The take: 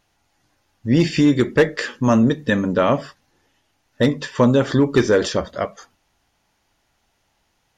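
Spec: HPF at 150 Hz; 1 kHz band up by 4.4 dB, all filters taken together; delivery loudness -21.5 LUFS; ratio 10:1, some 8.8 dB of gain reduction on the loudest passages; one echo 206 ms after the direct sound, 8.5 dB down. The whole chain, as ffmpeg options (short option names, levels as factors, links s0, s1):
-af "highpass=150,equalizer=f=1000:t=o:g=5.5,acompressor=threshold=0.126:ratio=10,aecho=1:1:206:0.376,volume=1.33"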